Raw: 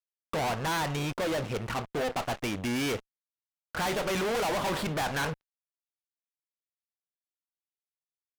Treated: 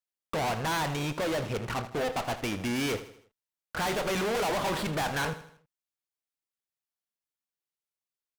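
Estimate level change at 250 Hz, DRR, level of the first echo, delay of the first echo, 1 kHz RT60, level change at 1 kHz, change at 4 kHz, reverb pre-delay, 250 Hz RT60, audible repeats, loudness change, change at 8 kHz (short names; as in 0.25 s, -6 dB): 0.0 dB, none, -13.5 dB, 80 ms, none, +0.5 dB, 0.0 dB, none, none, 4, 0.0 dB, 0.0 dB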